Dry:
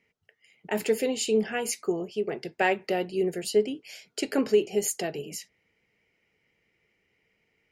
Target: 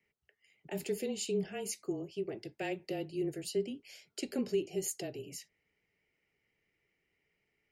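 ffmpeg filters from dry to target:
ffmpeg -i in.wav -filter_complex "[0:a]afreqshift=-24,acrossover=split=400|760|2300[link_01][link_02][link_03][link_04];[link_02]alimiter=level_in=4dB:limit=-24dB:level=0:latency=1,volume=-4dB[link_05];[link_03]acompressor=threshold=-54dB:ratio=6[link_06];[link_01][link_05][link_06][link_04]amix=inputs=4:normalize=0,volume=-8dB" out.wav

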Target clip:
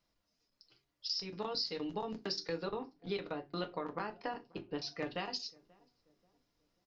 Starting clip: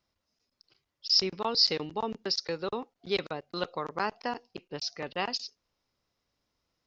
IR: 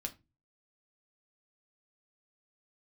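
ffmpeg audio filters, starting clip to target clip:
-filter_complex "[0:a]asettb=1/sr,asplit=3[link_01][link_02][link_03];[link_01]atrim=end=2.654[link_04];[link_02]atrim=start=2.65:end=4.99,asetpts=PTS-STARTPTS,afade=type=in:duration=0.004:curve=qsin,afade=type=out:start_time=2.336:duration=0.004:curve=qsin,lowpass=3600[link_05];[link_03]atrim=start=4.986[link_06];[link_04][link_05]acrossfade=duration=0.004:curve1=hsin:curve2=qsin[link_07];[link_07][link_06]acrossfade=duration=0.004:curve1=qsin:curve2=hsin,acompressor=threshold=-33dB:ratio=12,asplit=2[link_08][link_09];[link_09]adelay=535,lowpass=frequency=870:poles=1,volume=-24dB,asplit=2[link_10][link_11];[link_11]adelay=535,lowpass=frequency=870:poles=1,volume=0.42,asplit=2[link_12][link_13];[link_13]adelay=535,lowpass=frequency=870:poles=1,volume=0.42[link_14];[link_08][link_10][link_12][link_14]amix=inputs=4:normalize=0[link_15];[1:a]atrim=start_sample=2205,asetrate=52920,aresample=44100[link_16];[link_15][link_16]afir=irnorm=-1:irlink=0,volume=2dB"

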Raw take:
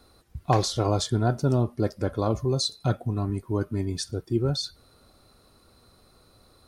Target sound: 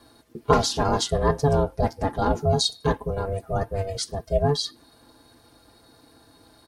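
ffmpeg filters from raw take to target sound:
ffmpeg -i in.wav -af "aecho=1:1:5.4:0.94,aeval=exprs='val(0)*sin(2*PI*290*n/s)':channel_layout=same,volume=3.5dB" out.wav

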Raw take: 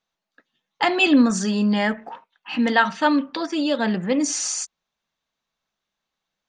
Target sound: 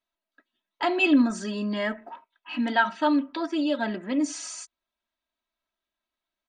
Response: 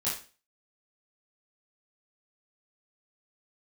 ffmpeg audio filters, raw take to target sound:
-af "equalizer=frequency=6200:width=1.4:gain=-7.5,aecho=1:1:3.1:0.83,volume=-7.5dB"

